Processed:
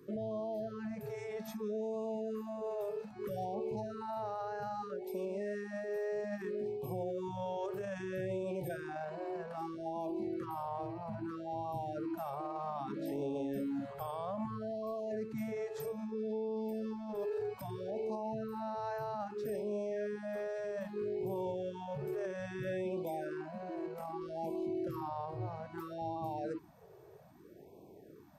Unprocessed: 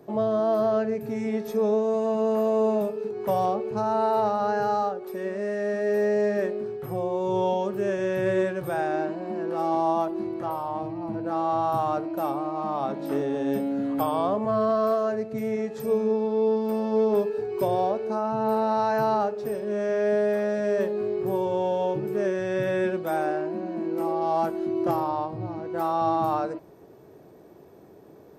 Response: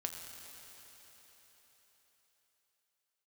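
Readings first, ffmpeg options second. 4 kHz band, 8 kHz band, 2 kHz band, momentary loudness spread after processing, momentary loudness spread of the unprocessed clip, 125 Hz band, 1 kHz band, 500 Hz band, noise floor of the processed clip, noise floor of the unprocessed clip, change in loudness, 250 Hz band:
-12.0 dB, n/a, -13.0 dB, 5 LU, 7 LU, -9.0 dB, -15.0 dB, -13.5 dB, -56 dBFS, -50 dBFS, -13.5 dB, -12.0 dB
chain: -filter_complex "[0:a]acrossover=split=130[a][b];[b]alimiter=level_in=1.5dB:limit=-24dB:level=0:latency=1:release=18,volume=-1.5dB[c];[a][c]amix=inputs=2:normalize=0,afftfilt=real='re*(1-between(b*sr/1024,230*pow(1600/230,0.5+0.5*sin(2*PI*0.62*pts/sr))/1.41,230*pow(1600/230,0.5+0.5*sin(2*PI*0.62*pts/sr))*1.41))':imag='im*(1-between(b*sr/1024,230*pow(1600/230,0.5+0.5*sin(2*PI*0.62*pts/sr))/1.41,230*pow(1600/230,0.5+0.5*sin(2*PI*0.62*pts/sr))*1.41))':win_size=1024:overlap=0.75,volume=-5.5dB"

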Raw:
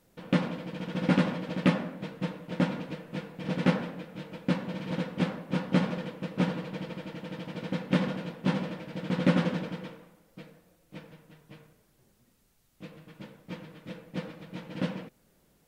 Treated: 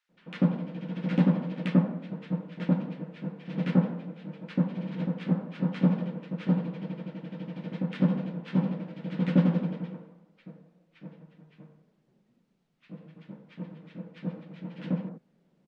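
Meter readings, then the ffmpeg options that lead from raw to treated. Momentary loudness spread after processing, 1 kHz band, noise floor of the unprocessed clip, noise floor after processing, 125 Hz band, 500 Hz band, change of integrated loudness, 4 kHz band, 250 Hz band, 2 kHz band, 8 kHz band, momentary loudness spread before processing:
19 LU, -5.5 dB, -67 dBFS, -69 dBFS, +3.0 dB, -3.0 dB, +1.5 dB, -8.0 dB, +2.5 dB, -7.0 dB, n/a, 21 LU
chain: -filter_complex "[0:a]adynamicsmooth=sensitivity=1:basefreq=3.5k,lowshelf=f=120:t=q:w=3:g=-11.5,acrossover=split=1400[a][b];[a]adelay=90[c];[c][b]amix=inputs=2:normalize=0,volume=-3.5dB"

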